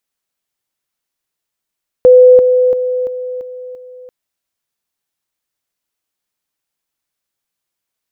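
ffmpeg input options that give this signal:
ffmpeg -f lavfi -i "aevalsrc='pow(10,(-1.5-6*floor(t/0.34))/20)*sin(2*PI*503*t)':duration=2.04:sample_rate=44100" out.wav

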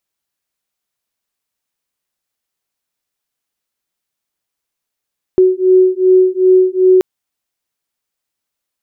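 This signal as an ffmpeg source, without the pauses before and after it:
ffmpeg -f lavfi -i "aevalsrc='0.316*(sin(2*PI*370*t)+sin(2*PI*372.6*t))':duration=1.63:sample_rate=44100" out.wav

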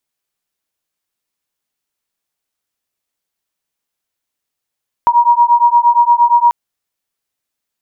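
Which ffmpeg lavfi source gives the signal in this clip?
ffmpeg -f lavfi -i "aevalsrc='0.316*(sin(2*PI*948*t)+sin(2*PI*956.6*t))':duration=1.44:sample_rate=44100" out.wav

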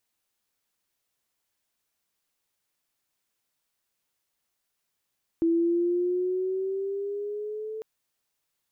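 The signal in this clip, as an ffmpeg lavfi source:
ffmpeg -f lavfi -i "aevalsrc='pow(10,(-19.5-13*t/2.4)/20)*sin(2*PI*330*2.4/(5*log(2)/12)*(exp(5*log(2)/12*t/2.4)-1))':duration=2.4:sample_rate=44100" out.wav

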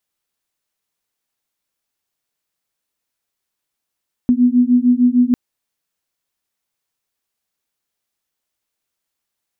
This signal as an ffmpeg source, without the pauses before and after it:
ffmpeg -f lavfi -i "aevalsrc='0.224*(sin(2*PI*243*t)+sin(2*PI*249.6*t))':duration=1.05:sample_rate=44100" out.wav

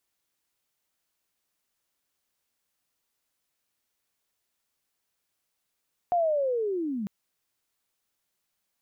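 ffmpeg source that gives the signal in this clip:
ffmpeg -f lavfi -i "aevalsrc='pow(10,(-20.5-8.5*t/0.95)/20)*sin(2*PI*(720*t-530*t*t/(2*0.95)))':duration=0.95:sample_rate=44100" out.wav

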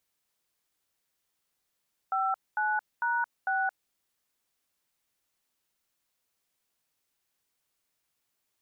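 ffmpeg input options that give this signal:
ffmpeg -f lavfi -i "aevalsrc='0.0398*clip(min(mod(t,0.45),0.222-mod(t,0.45))/0.002,0,1)*(eq(floor(t/0.45),0)*(sin(2*PI*770*mod(t,0.45))+sin(2*PI*1336*mod(t,0.45)))+eq(floor(t/0.45),1)*(sin(2*PI*852*mod(t,0.45))+sin(2*PI*1477*mod(t,0.45)))+eq(floor(t/0.45),2)*(sin(2*PI*941*mod(t,0.45))+sin(2*PI*1477*mod(t,0.45)))+eq(floor(t/0.45),3)*(sin(2*PI*770*mod(t,0.45))+sin(2*PI*1477*mod(t,0.45))))':duration=1.8:sample_rate=44100" out.wav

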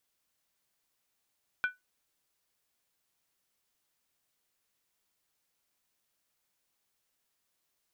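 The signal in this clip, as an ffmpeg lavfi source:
ffmpeg -f lavfi -i "aevalsrc='0.075*pow(10,-3*t/0.17)*sin(2*PI*1490*t)+0.0237*pow(10,-3*t/0.135)*sin(2*PI*2375.1*t)+0.0075*pow(10,-3*t/0.116)*sin(2*PI*3182.6*t)+0.00237*pow(10,-3*t/0.112)*sin(2*PI*3421*t)+0.00075*pow(10,-3*t/0.104)*sin(2*PI*3953*t)':duration=0.63:sample_rate=44100" out.wav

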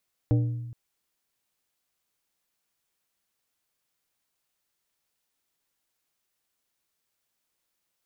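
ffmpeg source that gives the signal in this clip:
ffmpeg -f lavfi -i "aevalsrc='0.133*pow(10,-3*t/1.21)*sin(2*PI*119*t)+0.0631*pow(10,-3*t/0.637)*sin(2*PI*297.5*t)+0.0299*pow(10,-3*t/0.459)*sin(2*PI*476*t)+0.0141*pow(10,-3*t/0.392)*sin(2*PI*595*t)+0.00668*pow(10,-3*t/0.326)*sin(2*PI*773.5*t)':duration=0.42:sample_rate=44100" out.wav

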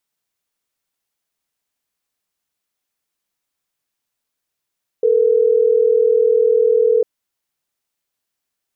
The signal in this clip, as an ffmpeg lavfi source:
ffmpeg -f lavfi -i "aevalsrc='0.211*(sin(2*PI*440*t)+sin(2*PI*480*t))*clip(min(mod(t,6),2-mod(t,6))/0.005,0,1)':duration=3.12:sample_rate=44100" out.wav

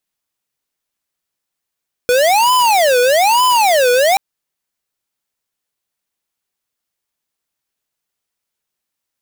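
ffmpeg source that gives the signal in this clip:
ffmpeg -f lavfi -i "aevalsrc='0.266*(2*lt(mod((749.5*t-260.5/(2*PI*1.1)*sin(2*PI*1.1*t)),1),0.5)-1)':duration=2.08:sample_rate=44100" out.wav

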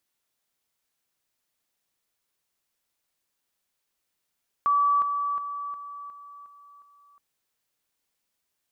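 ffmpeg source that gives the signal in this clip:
ffmpeg -f lavfi -i "aevalsrc='pow(10,(-18.5-6*floor(t/0.36))/20)*sin(2*PI*1150*t)':duration=2.52:sample_rate=44100" out.wav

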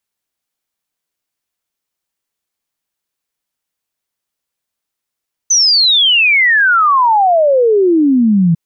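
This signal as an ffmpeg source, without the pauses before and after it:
ffmpeg -f lavfi -i "aevalsrc='0.447*clip(min(t,3.05-t)/0.01,0,1)*sin(2*PI*6200*3.05/log(160/6200)*(exp(log(160/6200)*t/3.05)-1))':duration=3.05:sample_rate=44100" out.wav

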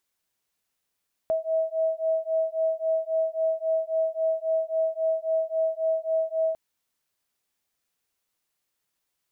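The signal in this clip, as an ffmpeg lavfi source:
ffmpeg -f lavfi -i "aevalsrc='0.0501*(sin(2*PI*643*t)+sin(2*PI*646.7*t))':duration=5.25:sample_rate=44100" out.wav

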